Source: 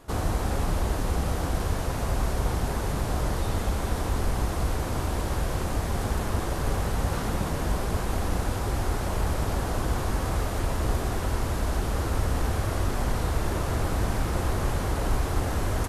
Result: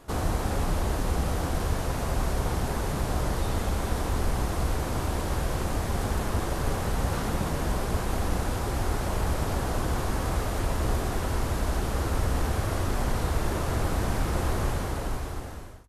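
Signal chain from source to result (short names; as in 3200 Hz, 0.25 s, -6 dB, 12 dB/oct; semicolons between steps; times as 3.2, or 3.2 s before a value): ending faded out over 1.30 s; notches 50/100 Hz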